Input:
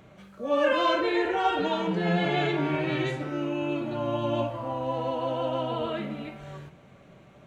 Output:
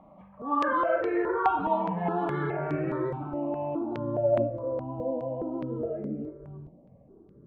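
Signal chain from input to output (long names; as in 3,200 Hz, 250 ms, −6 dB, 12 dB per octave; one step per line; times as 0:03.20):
low-pass filter sweep 1,100 Hz → 430 Hz, 0:02.67–0:05.30
step-sequenced phaser 4.8 Hz 410–3,500 Hz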